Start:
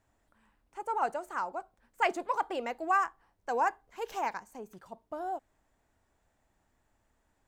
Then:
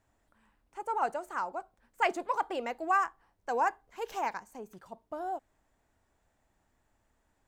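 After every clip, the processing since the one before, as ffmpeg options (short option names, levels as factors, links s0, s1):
-af anull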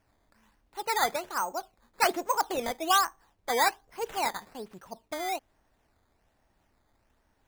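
-af "acrusher=samples=11:mix=1:aa=0.000001:lfo=1:lforange=11:lforate=1.2,volume=1.5"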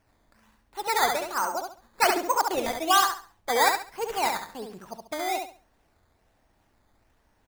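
-af "aecho=1:1:69|138|207|276:0.562|0.152|0.041|0.0111,volume=1.33"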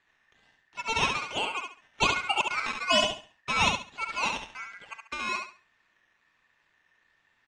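-af "lowpass=f=5700:w=0.5412,lowpass=f=5700:w=1.3066,aeval=exprs='val(0)*sin(2*PI*1800*n/s)':c=same"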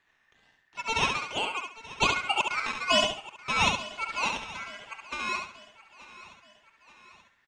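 -af "aecho=1:1:881|1762|2643|3524:0.126|0.0642|0.0327|0.0167"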